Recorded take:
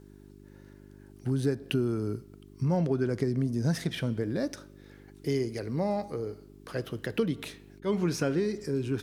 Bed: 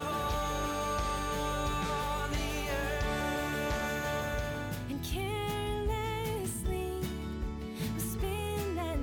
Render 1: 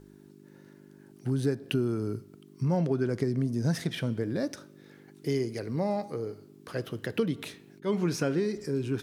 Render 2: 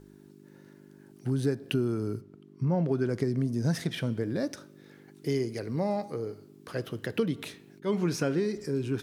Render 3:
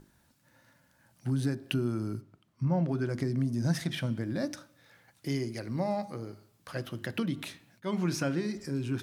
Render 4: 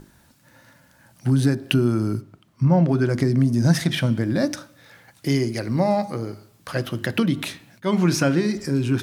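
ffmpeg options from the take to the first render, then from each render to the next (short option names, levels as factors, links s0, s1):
-af "bandreject=f=50:t=h:w=4,bandreject=f=100:t=h:w=4"
-filter_complex "[0:a]asplit=3[s0][s1][s2];[s0]afade=t=out:st=2.2:d=0.02[s3];[s1]lowpass=f=1700:p=1,afade=t=in:st=2.2:d=0.02,afade=t=out:st=2.87:d=0.02[s4];[s2]afade=t=in:st=2.87:d=0.02[s5];[s3][s4][s5]amix=inputs=3:normalize=0"
-af "equalizer=f=440:t=o:w=0.25:g=-14.5,bandreject=f=50:t=h:w=6,bandreject=f=100:t=h:w=6,bandreject=f=150:t=h:w=6,bandreject=f=200:t=h:w=6,bandreject=f=250:t=h:w=6,bandreject=f=300:t=h:w=6,bandreject=f=350:t=h:w=6,bandreject=f=400:t=h:w=6"
-af "volume=3.55"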